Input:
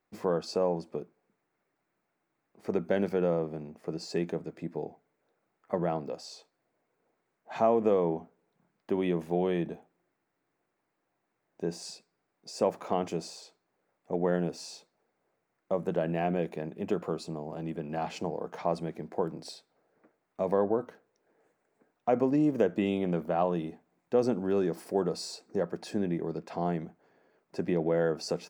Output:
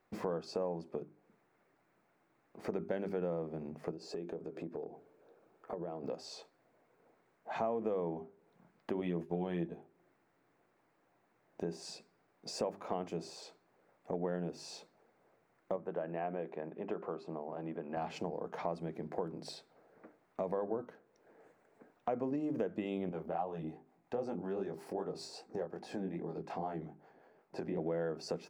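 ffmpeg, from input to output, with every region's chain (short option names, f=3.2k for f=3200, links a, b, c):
-filter_complex "[0:a]asettb=1/sr,asplit=3[a][b][c];[a]atrim=end=3.914[d];[b]atrim=start=3.91:end=6.04,asetpts=PTS-STARTPTS,afade=t=in:d=0.004:c=qsin,afade=t=out:st=2.126:d=0.004:c=qsin,equalizer=f=420:t=o:w=1.1:g=8,bandreject=f=2k:w=9.6,acompressor=threshold=-45dB:ratio=2.5:attack=3.2:release=140:knee=1:detection=peak[e];[c]atrim=start=6.036[f];[d][e]acrossfade=d=0.004:c1=hsin:c2=qsin[g];[g][f]acrossfade=d=0.004:c1=qsin:c2=hsin,asettb=1/sr,asplit=3[h][i][j];[h]atrim=end=9.004[k];[i]atrim=start=9:end=9.73,asetpts=PTS-STARTPTS,afade=t=in:d=0.004:c=qsin,afade=t=out:st=0.726:d=0.004:c=qsin,agate=range=-33dB:threshold=-36dB:ratio=3:release=100:detection=peak,asplit=2[l][m];[m]adelay=12,volume=-4.5dB[n];[l][n]amix=inputs=2:normalize=0,atrim=end_sample=32193[o];[j]atrim=start=9.726[p];[k][o]acrossfade=d=0.004:c1=hsin:c2=qsin[q];[q][p]acrossfade=d=0.004:c1=qsin:c2=hsin,asettb=1/sr,asplit=3[r][s][t];[r]atrim=end=15.764[u];[s]atrim=start=15.76:end=17.97,asetpts=PTS-STARTPTS,afade=t=in:d=0.004:c=qsin,afade=t=out:st=2.206:d=0.004:c=qsin,lowpass=1.5k,aemphasis=mode=production:type=riaa[v];[t]atrim=start=17.966[w];[u][v]acrossfade=d=0.004:c1=hsin:c2=qsin[x];[x][w]acrossfade=d=0.004:c1=qsin:c2=hsin,asettb=1/sr,asplit=3[y][z][aa];[y]atrim=end=23.094[ab];[z]atrim=start=23.09:end=27.78,asetpts=PTS-STARTPTS,afade=t=in:d=0.004:c=qsin,afade=t=out:st=4.686:d=0.004:c=qsin,flanger=delay=19.5:depth=6.4:speed=2.5,equalizer=f=800:t=o:w=0.23:g=7,acrossover=split=480[ac][ad];[ac]aeval=exprs='val(0)*(1-0.5/2+0.5/2*cos(2*PI*5.4*n/s))':c=same[ae];[ad]aeval=exprs='val(0)*(1-0.5/2-0.5/2*cos(2*PI*5.4*n/s))':c=same[af];[ae][af]amix=inputs=2:normalize=0[ag];[aa]atrim=start=27.776[ah];[ab][ag]acrossfade=d=0.004:c1=hsin:c2=qsin[ai];[ai][ah]acrossfade=d=0.004:c1=qsin:c2=hsin,highshelf=f=3.6k:g=-8.5,bandreject=f=50:t=h:w=6,bandreject=f=100:t=h:w=6,bandreject=f=150:t=h:w=6,bandreject=f=200:t=h:w=6,bandreject=f=250:t=h:w=6,bandreject=f=300:t=h:w=6,bandreject=f=350:t=h:w=6,bandreject=f=400:t=h:w=6,acompressor=threshold=-49dB:ratio=2.5,volume=7.5dB"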